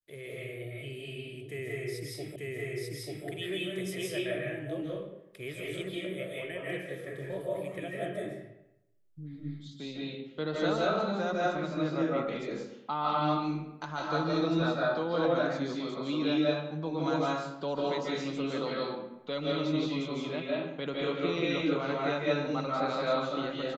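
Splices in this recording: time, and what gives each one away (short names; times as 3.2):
2.36 repeat of the last 0.89 s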